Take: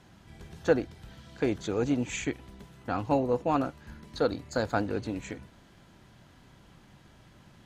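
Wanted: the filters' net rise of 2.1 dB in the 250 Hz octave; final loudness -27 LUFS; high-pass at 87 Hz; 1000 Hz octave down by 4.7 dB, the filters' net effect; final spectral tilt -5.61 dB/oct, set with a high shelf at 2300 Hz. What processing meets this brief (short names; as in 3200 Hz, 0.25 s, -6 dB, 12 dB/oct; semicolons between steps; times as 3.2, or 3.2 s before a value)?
HPF 87 Hz; bell 250 Hz +3 dB; bell 1000 Hz -5.5 dB; high shelf 2300 Hz -7.5 dB; gain +3.5 dB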